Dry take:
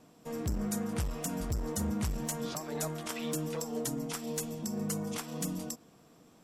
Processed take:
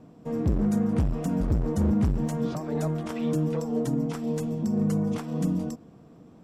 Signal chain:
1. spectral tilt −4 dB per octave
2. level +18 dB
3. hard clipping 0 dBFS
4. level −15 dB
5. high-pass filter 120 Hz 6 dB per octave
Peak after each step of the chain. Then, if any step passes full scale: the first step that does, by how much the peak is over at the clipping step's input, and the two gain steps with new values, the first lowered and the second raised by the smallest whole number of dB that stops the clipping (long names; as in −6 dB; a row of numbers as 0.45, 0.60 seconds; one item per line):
−11.5, +6.5, 0.0, −15.0, −12.5 dBFS
step 2, 6.5 dB
step 2 +11 dB, step 4 −8 dB